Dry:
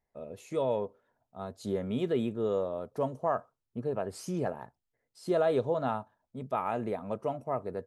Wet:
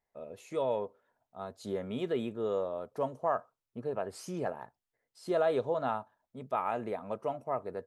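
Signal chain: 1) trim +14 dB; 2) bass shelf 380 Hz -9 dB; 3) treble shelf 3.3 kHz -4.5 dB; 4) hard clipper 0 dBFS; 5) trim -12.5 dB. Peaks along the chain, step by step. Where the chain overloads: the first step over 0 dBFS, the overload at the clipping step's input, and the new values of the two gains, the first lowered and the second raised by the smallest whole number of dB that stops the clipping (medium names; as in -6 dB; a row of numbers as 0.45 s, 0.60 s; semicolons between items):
-2.0 dBFS, -4.5 dBFS, -5.0 dBFS, -5.0 dBFS, -17.5 dBFS; nothing clips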